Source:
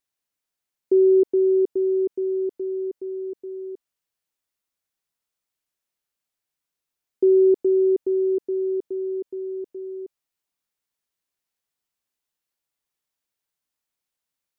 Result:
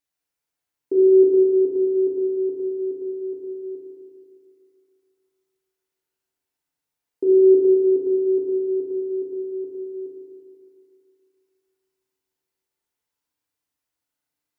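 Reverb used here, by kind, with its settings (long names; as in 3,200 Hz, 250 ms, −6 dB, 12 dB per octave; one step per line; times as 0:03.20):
feedback delay network reverb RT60 2.5 s, low-frequency decay 0.95×, high-frequency decay 0.35×, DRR −3.5 dB
level −3 dB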